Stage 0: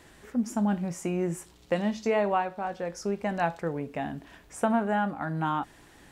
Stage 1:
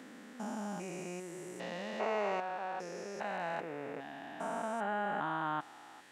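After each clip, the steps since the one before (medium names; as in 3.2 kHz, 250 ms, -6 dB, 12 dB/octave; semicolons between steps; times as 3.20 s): spectrogram pixelated in time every 400 ms; frequency weighting A; trim -1 dB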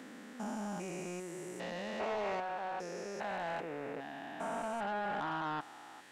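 saturation -32.5 dBFS, distortion -13 dB; trim +1.5 dB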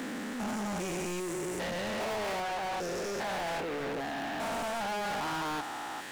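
in parallel at -10.5 dB: bit crusher 8-bit; on the sum: waveshaping leveller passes 5; trim -3.5 dB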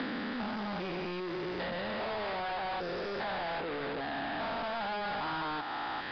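rippled Chebyshev low-pass 5 kHz, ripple 3 dB; three bands compressed up and down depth 100%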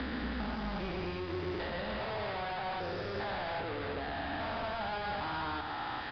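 octave divider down 2 oct, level -1 dB; delay 114 ms -6.5 dB; trim -2.5 dB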